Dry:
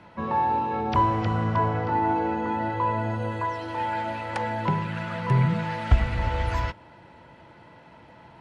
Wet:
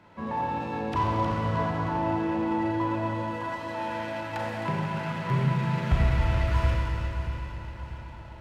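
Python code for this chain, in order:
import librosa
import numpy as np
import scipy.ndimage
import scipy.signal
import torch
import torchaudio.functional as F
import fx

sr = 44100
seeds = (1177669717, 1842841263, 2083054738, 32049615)

y = fx.echo_feedback(x, sr, ms=636, feedback_pct=54, wet_db=-13.5)
y = fx.rev_schroeder(y, sr, rt60_s=2.9, comb_ms=29, drr_db=-4.0)
y = fx.running_max(y, sr, window=3)
y = F.gain(torch.from_numpy(y), -6.0).numpy()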